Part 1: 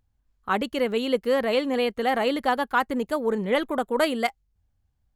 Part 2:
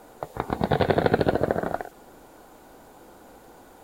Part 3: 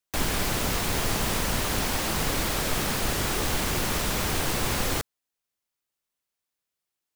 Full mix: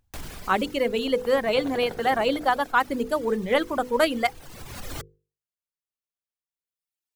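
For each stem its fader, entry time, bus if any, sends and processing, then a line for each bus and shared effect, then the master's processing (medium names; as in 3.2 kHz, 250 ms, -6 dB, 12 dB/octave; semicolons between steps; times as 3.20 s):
+2.0 dB, 0.00 s, no send, reverb removal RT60 1.6 s
-16.0 dB, 0.85 s, no send, none
-2.0 dB, 0.00 s, no send, reverb removal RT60 1.9 s; bass shelf 140 Hz +7.5 dB; peak limiter -21.5 dBFS, peak gain reduction 12 dB; auto duck -14 dB, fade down 0.80 s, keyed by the first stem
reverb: none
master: hum notches 50/100/150/200/250/300/350/400/450/500 Hz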